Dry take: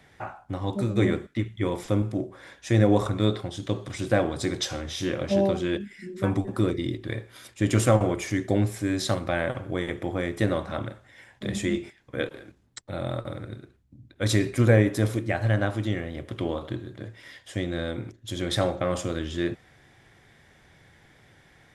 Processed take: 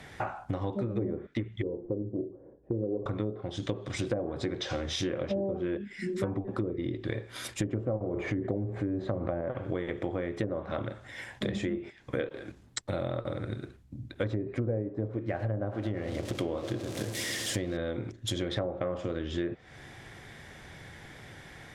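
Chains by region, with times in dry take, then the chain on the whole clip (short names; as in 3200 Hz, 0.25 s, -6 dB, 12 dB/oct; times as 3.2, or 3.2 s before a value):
1.62–3.06 ladder low-pass 510 Hz, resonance 45% + notches 50/100/150/200/250/300/350 Hz
8.14–9.41 low shelf 130 Hz +2 dB + notch 5400 Hz, Q 6.5 + fast leveller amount 50%
15.28–17.77 switching spikes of -27.5 dBFS + analogue delay 0.11 s, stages 1024, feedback 85%, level -16 dB
whole clip: treble ducked by the level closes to 660 Hz, closed at -18.5 dBFS; dynamic EQ 470 Hz, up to +5 dB, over -40 dBFS, Q 1.5; compressor 6:1, threshold -38 dBFS; gain +8 dB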